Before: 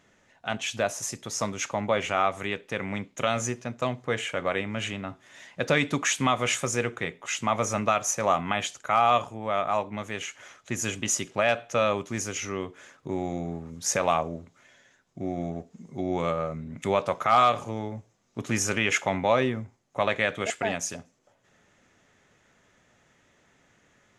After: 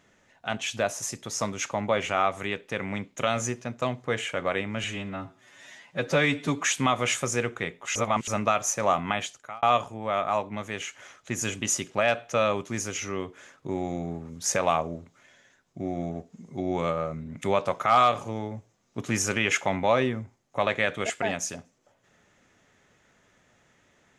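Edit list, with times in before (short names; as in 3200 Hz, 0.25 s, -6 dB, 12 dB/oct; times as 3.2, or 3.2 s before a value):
4.84–6.03 stretch 1.5×
7.36–7.68 reverse
8.52–9.03 fade out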